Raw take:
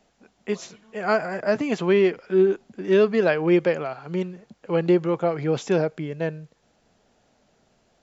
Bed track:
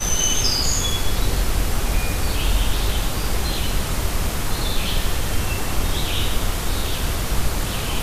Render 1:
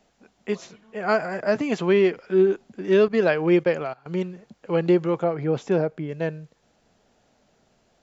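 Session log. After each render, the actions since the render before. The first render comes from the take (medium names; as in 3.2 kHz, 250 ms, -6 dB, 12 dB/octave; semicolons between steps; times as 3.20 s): 0.55–1.09 s: treble shelf 4.3 kHz -7.5 dB; 3.08–4.06 s: gate -32 dBFS, range -15 dB; 5.24–6.09 s: treble shelf 2.4 kHz -10 dB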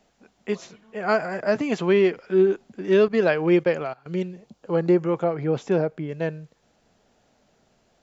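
4.02–5.15 s: peaking EQ 800 Hz -> 4.6 kHz -11 dB 0.57 oct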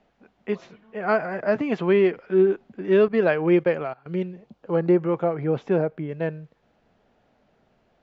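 low-pass 2.8 kHz 12 dB/octave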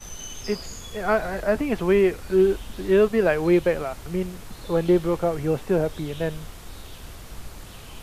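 add bed track -17.5 dB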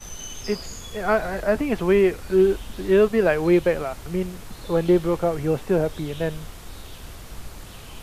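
trim +1 dB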